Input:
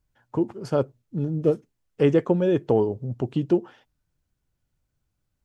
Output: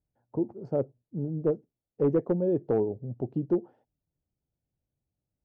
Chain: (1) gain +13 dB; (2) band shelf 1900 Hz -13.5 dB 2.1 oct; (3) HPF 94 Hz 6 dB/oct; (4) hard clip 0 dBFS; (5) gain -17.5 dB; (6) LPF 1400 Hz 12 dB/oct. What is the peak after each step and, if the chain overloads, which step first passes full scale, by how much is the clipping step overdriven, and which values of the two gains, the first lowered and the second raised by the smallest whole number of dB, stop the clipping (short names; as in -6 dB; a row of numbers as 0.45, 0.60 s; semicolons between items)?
+5.5, +5.0, +4.5, 0.0, -17.5, -17.0 dBFS; step 1, 4.5 dB; step 1 +8 dB, step 5 -12.5 dB